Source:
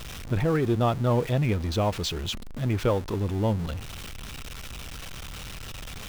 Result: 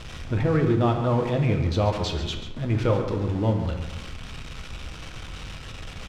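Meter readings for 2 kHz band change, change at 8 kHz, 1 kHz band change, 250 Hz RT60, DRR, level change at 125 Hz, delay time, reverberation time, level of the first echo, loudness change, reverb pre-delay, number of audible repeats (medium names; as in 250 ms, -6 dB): +1.0 dB, -5.0 dB, +1.5 dB, 1.2 s, 3.0 dB, +2.5 dB, 138 ms, 1.1 s, -10.5 dB, +2.0 dB, 4 ms, 1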